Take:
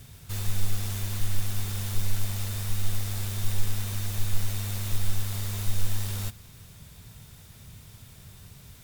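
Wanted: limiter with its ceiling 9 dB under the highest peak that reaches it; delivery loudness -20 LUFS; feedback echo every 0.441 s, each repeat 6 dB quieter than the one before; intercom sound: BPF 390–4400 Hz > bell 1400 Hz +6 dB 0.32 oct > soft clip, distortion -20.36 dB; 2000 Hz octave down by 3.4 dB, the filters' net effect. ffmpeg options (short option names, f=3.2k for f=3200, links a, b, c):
-af "equalizer=f=2k:t=o:g=-6.5,alimiter=limit=-20.5dB:level=0:latency=1,highpass=390,lowpass=4.4k,equalizer=f=1.4k:t=o:w=0.32:g=6,aecho=1:1:441|882|1323|1764|2205|2646:0.501|0.251|0.125|0.0626|0.0313|0.0157,asoftclip=threshold=-36.5dB,volume=25dB"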